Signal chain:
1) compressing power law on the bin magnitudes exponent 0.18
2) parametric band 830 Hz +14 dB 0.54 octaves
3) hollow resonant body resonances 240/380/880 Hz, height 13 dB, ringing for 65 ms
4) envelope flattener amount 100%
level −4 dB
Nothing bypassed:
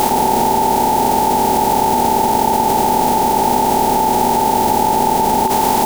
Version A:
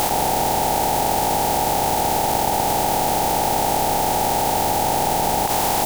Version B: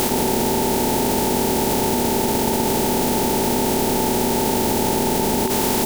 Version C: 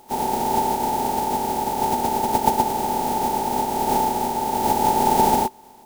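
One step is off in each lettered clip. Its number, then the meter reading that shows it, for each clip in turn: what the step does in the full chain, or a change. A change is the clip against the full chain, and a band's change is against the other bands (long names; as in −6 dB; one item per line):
3, 250 Hz band −7.0 dB
2, 1 kHz band −11.5 dB
4, change in crest factor +6.5 dB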